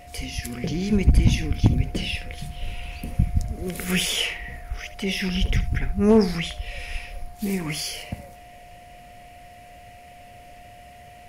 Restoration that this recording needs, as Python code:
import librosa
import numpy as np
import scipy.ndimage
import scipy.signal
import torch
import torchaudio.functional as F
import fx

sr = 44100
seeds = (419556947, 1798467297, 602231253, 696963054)

y = fx.fix_declip(x, sr, threshold_db=-7.5)
y = fx.notch(y, sr, hz=710.0, q=30.0)
y = fx.fix_echo_inverse(y, sr, delay_ms=72, level_db=-14.5)